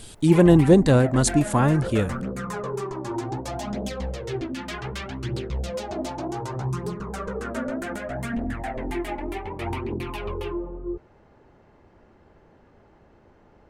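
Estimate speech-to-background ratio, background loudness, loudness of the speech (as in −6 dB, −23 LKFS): 12.5 dB, −31.0 LKFS, −18.5 LKFS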